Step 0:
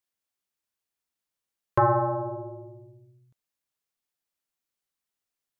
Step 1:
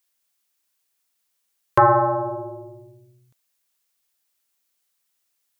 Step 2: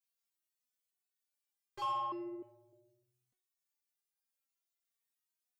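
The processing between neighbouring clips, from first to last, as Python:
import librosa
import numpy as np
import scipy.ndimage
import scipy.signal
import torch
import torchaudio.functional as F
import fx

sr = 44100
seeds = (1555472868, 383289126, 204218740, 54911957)

y1 = fx.tilt_eq(x, sr, slope=2.0)
y1 = y1 * librosa.db_to_amplitude(7.5)
y2 = 10.0 ** (-21.5 / 20.0) * np.tanh(y1 / 10.0 ** (-21.5 / 20.0))
y2 = fx.resonator_held(y2, sr, hz=3.3, low_hz=230.0, high_hz=400.0)
y2 = y2 * librosa.db_to_amplitude(-2.5)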